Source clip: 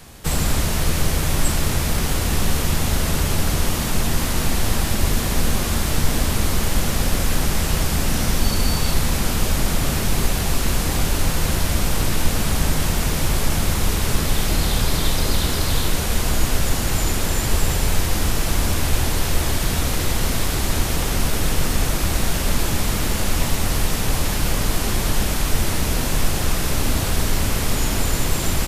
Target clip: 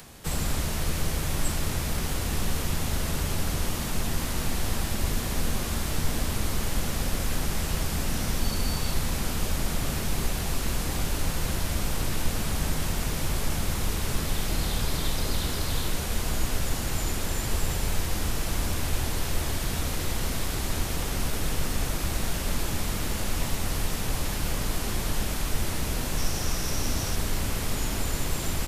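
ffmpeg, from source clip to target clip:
-filter_complex "[0:a]asettb=1/sr,asplit=3[a][b][c];[a]atrim=end=26.174[d];[b]atrim=start=26.17:end=27.15,asetpts=PTS-STARTPTS,afade=t=in:d=0.004:c=qsin,afade=t=out:st=0.976:d=0.004:c=qsin,equalizer=f=5.7k:t=o:w=0.23:g=10[e];[c]atrim=start=27.146[f];[d][e]acrossfade=d=0.004:c1=hsin:c2=qsin[g];[g][f]acrossfade=d=0.004:c1=qsin:c2=hsin,acrossover=split=110[h][i];[i]acompressor=mode=upward:threshold=-35dB:ratio=2.5[j];[h][j]amix=inputs=2:normalize=0,volume=-8dB"

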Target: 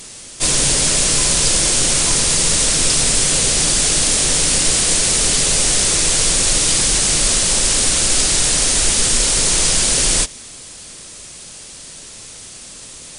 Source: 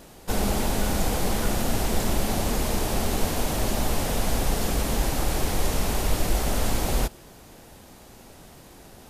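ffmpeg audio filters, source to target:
-af "crystalizer=i=6:c=0,asetrate=30429,aresample=44100,volume=1.5dB"

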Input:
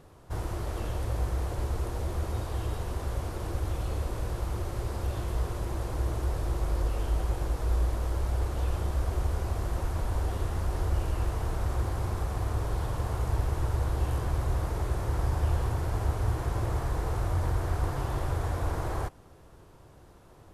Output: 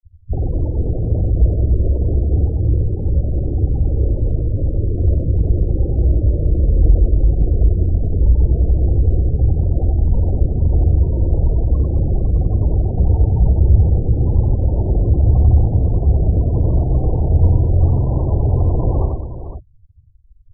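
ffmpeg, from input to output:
-filter_complex "[0:a]tiltshelf=f=810:g=6,asplit=3[a][b][c];[b]asetrate=37084,aresample=44100,atempo=1.18921,volume=-1dB[d];[c]asetrate=66075,aresample=44100,atempo=0.66742,volume=-7dB[e];[a][d][e]amix=inputs=3:normalize=0,asoftclip=type=tanh:threshold=-12dB,afftfilt=real='re*gte(hypot(re,im),0.0631)':imag='im*gte(hypot(re,im),0.0631)':win_size=1024:overlap=0.75,asplit=2[f][g];[g]aecho=0:1:47|92|210|449|510:0.237|0.708|0.282|0.133|0.299[h];[f][h]amix=inputs=2:normalize=0,volume=5.5dB"

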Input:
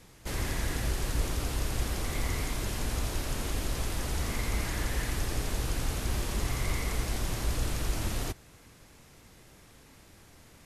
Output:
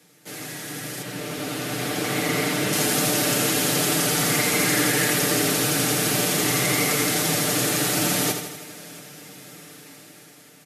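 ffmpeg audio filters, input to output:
-filter_complex "[0:a]equalizer=f=1k:t=o:w=0.22:g=-11.5,asplit=2[a][b];[b]aecho=0:1:80|160|240|320|400|480|560:0.422|0.245|0.142|0.0823|0.0477|0.0277|0.0161[c];[a][c]amix=inputs=2:normalize=0,asettb=1/sr,asplit=3[d][e][f];[d]atrim=end=1.024[g];[e]atrim=start=1.02:end=2.73,asetpts=PTS-STARTPTS,afade=t=in:d=0.004:c=qsin,afade=t=out:st=1.706:d=0.004:c=qsin,acrossover=split=4100[h][i];[i]acompressor=threshold=-46dB:ratio=4:attack=1:release=60[j];[h][j]amix=inputs=2:normalize=0[k];[f]atrim=start=2.726[l];[g][k]acrossfade=d=0.004:c1=hsin:c2=qsin[m];[m][l]acrossfade=d=0.004:c1=qsin:c2=hsin,highshelf=f=11k:g=8,dynaudnorm=f=310:g=11:m=15dB,highpass=f=160:w=0.5412,highpass=f=160:w=1.3066,aecho=1:1:6.7:0.65,asplit=2[n][o];[o]aecho=0:1:681:0.075[p];[n][p]amix=inputs=2:normalize=0,volume=-1.5dB"

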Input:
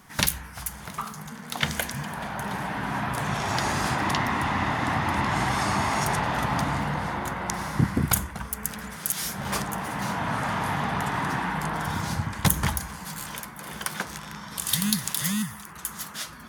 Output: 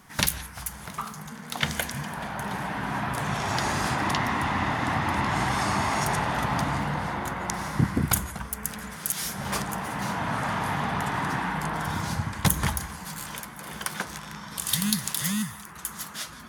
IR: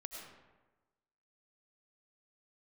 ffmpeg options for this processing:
-filter_complex "[0:a]asplit=2[a][b];[1:a]atrim=start_sample=2205,atrim=end_sample=4410,asetrate=24696,aresample=44100[c];[b][c]afir=irnorm=-1:irlink=0,volume=-4dB[d];[a][d]amix=inputs=2:normalize=0,volume=-4dB"

